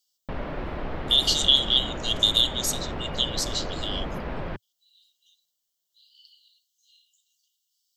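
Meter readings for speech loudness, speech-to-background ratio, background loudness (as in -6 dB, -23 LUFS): -22.5 LUFS, 12.0 dB, -34.5 LUFS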